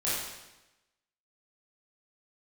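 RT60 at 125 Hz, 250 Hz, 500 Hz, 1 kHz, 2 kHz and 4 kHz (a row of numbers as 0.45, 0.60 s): 1.0, 1.0, 1.0, 1.0, 1.0, 0.95 s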